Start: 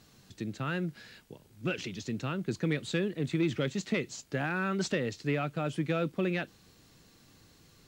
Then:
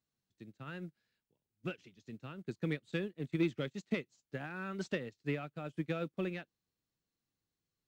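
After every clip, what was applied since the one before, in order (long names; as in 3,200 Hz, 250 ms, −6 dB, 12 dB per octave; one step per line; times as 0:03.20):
expander for the loud parts 2.5 to 1, over −45 dBFS
level −1.5 dB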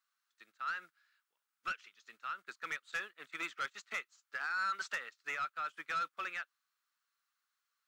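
high-pass with resonance 1,300 Hz, resonance Q 4.4
soft clipping −34 dBFS, distortion −13 dB
level +3.5 dB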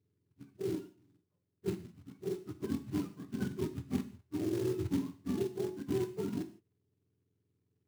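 frequency axis turned over on the octave scale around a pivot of 710 Hz
floating-point word with a short mantissa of 2 bits
reverb whose tail is shaped and stops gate 190 ms falling, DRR 8 dB
level +2.5 dB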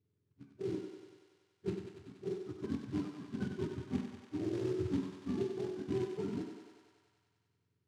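high-frequency loss of the air 81 metres
on a send: feedback echo with a high-pass in the loop 95 ms, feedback 77%, high-pass 320 Hz, level −6.5 dB
on the sum: level −2 dB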